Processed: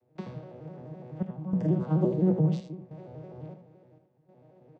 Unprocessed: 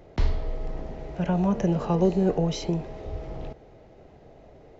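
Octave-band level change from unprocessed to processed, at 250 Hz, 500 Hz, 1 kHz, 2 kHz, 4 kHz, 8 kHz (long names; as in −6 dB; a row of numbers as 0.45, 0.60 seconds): −2.5 dB, −5.5 dB, −10.5 dB, below −10 dB, below −15 dB, can't be measured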